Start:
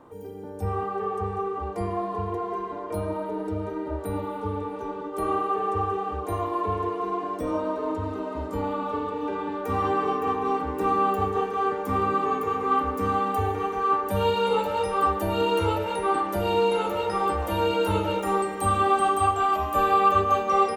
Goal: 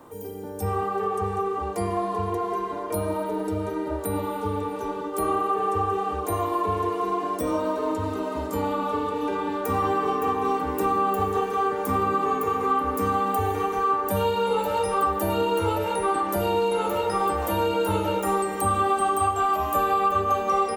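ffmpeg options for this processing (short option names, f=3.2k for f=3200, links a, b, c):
-filter_complex "[0:a]acrossover=split=83|1800[a][b][c];[a]acompressor=threshold=-45dB:ratio=4[d];[b]acompressor=threshold=-23dB:ratio=4[e];[c]acompressor=threshold=-47dB:ratio=4[f];[d][e][f]amix=inputs=3:normalize=0,crystalizer=i=2.5:c=0,volume=2.5dB"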